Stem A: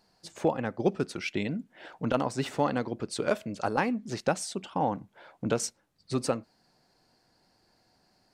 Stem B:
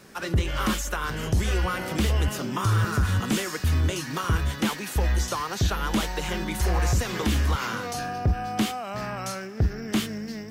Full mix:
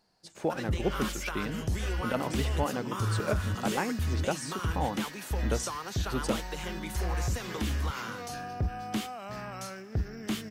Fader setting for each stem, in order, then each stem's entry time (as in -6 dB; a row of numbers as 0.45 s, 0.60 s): -4.0 dB, -7.5 dB; 0.00 s, 0.35 s